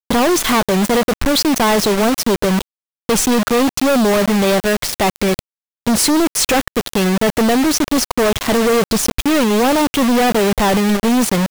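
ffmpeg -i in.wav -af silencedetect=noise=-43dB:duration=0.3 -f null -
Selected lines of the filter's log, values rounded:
silence_start: 2.62
silence_end: 3.09 | silence_duration: 0.47
silence_start: 5.39
silence_end: 5.87 | silence_duration: 0.47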